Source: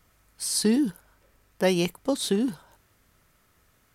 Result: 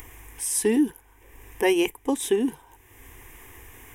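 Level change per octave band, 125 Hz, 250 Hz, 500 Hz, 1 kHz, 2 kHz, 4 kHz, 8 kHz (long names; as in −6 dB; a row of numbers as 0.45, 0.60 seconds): −10.5, +0.5, +3.0, +3.5, +4.0, −3.5, +2.5 decibels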